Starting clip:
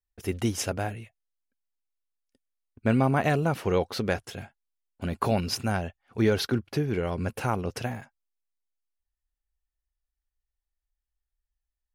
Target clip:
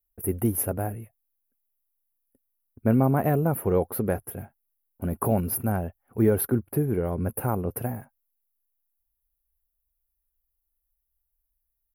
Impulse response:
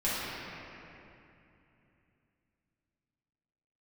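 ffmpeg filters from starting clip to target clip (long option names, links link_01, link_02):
-af "firequalizer=gain_entry='entry(380,0);entry(3500,-23);entry(8000,-20);entry(11000,15)':delay=0.05:min_phase=1,volume=2.5dB"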